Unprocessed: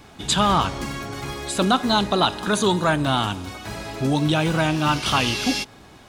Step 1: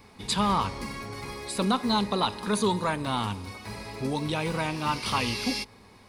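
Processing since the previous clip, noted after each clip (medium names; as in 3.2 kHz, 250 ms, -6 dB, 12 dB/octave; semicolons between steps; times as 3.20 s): rippled EQ curve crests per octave 0.9, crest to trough 8 dB; trim -7 dB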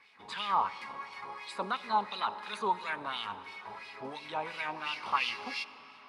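LFO band-pass sine 2.9 Hz 810–3000 Hz; reverberation RT60 5.0 s, pre-delay 45 ms, DRR 15.5 dB; trim +2 dB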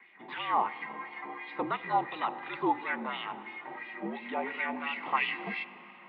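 small resonant body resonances 300/2000 Hz, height 12 dB, ringing for 20 ms; mistuned SSB -62 Hz 270–3200 Hz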